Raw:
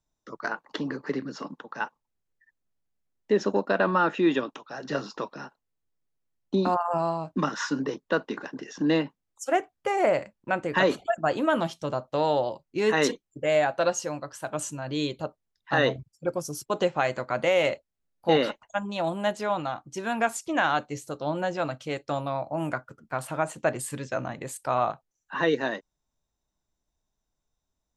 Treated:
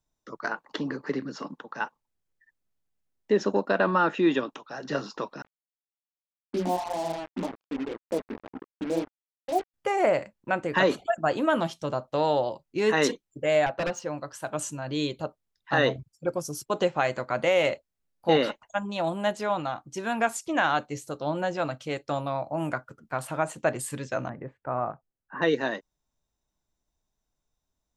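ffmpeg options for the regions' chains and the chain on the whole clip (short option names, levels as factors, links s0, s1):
-filter_complex "[0:a]asettb=1/sr,asplit=3[s0][s1][s2];[s0]atrim=end=5.424[s3];[s1]atrim=start=5.42:end=9.74,asetpts=PTS-STARTPTS,afade=t=in:d=0.004:c=qsin,afade=t=out:st=4.316:d=0.004:c=qsin,asuperpass=centerf=400:order=12:qfactor=0.54,flanger=delay=15.5:depth=6.8:speed=1.9,acrusher=bits=5:mix=0:aa=0.5[s4];[s2]atrim=start=9.736[s5];[s3][s4]acrossfade=d=0.004:c1=hsin:c2=qsin[s6];[s6][s5]acrossfade=d=0.004:c1=qsin:c2=hsin,asettb=1/sr,asplit=3[s7][s8][s9];[s7]atrim=end=13.664[s10];[s8]atrim=start=13.66:end=14.18,asetpts=PTS-STARTPTS,afade=t=in:d=0.004:c=qsin,afade=t=out:st=0.516:d=0.004:c=qsin,aeval=exprs='0.0841*(abs(mod(val(0)/0.0841+3,4)-2)-1)':c=same,adynamicsmooth=sensitivity=5:basefreq=5200,highshelf=f=4000:g=-7.5[s11];[s9]atrim=start=14.176[s12];[s10][s11]acrossfade=d=0.004:c1=hsin:c2=qsin[s13];[s13][s12]acrossfade=d=0.004:c1=qsin:c2=hsin,asettb=1/sr,asplit=3[s14][s15][s16];[s14]atrim=end=24.294[s17];[s15]atrim=start=24.29:end=25.42,asetpts=PTS-STARTPTS,afade=t=in:d=0.004:c=qsin,afade=t=out:st=1.126:d=0.004:c=qsin,lowpass=f=1700:w=0.5412,lowpass=f=1700:w=1.3066,equalizer=f=1000:t=o:w=1.8:g=-5.5[s18];[s16]atrim=start=25.416[s19];[s17][s18]acrossfade=d=0.004:c1=hsin:c2=qsin[s20];[s20][s19]acrossfade=d=0.004:c1=qsin:c2=hsin"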